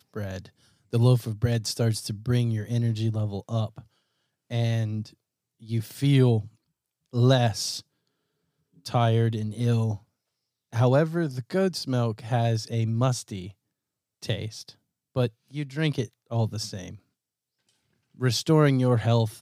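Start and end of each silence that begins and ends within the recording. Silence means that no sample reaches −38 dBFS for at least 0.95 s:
0:07.80–0:08.86
0:16.95–0:18.19

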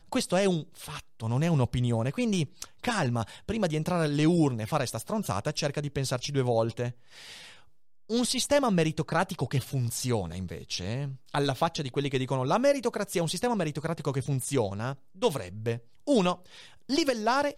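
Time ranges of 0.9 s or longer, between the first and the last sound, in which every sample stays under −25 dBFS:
0:06.88–0:08.11

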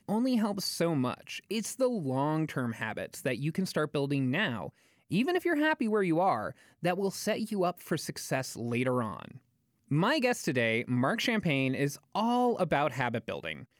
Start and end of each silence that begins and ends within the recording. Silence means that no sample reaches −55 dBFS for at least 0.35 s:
0:09.38–0:09.88

